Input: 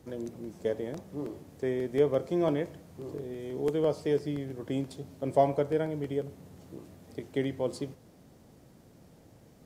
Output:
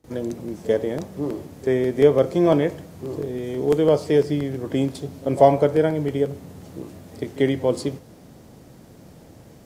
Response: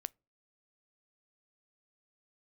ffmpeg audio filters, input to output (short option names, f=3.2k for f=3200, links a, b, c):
-filter_complex "[0:a]asplit=2[a][b];[1:a]atrim=start_sample=2205,adelay=41[c];[b][c]afir=irnorm=-1:irlink=0,volume=23dB[d];[a][d]amix=inputs=2:normalize=0,volume=-10dB"